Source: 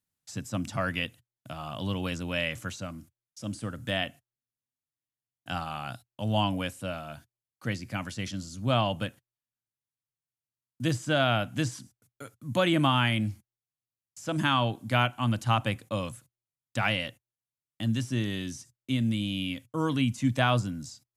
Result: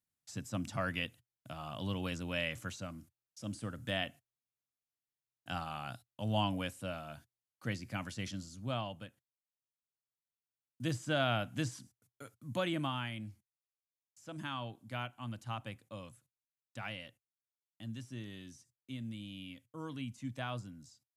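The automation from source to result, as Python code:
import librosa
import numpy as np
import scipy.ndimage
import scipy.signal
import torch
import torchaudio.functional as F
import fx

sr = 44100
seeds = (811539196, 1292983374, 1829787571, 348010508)

y = fx.gain(x, sr, db=fx.line((8.32, -6.0), (9.07, -16.5), (11.08, -7.0), (12.38, -7.0), (13.12, -15.5)))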